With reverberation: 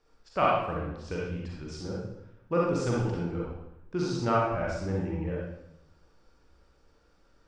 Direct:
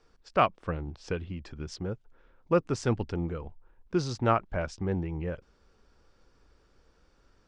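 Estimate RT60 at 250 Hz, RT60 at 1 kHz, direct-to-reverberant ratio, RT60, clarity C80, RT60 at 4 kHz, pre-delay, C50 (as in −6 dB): 0.95 s, 0.80 s, −4.5 dB, 0.80 s, 2.5 dB, 0.75 s, 36 ms, −2.0 dB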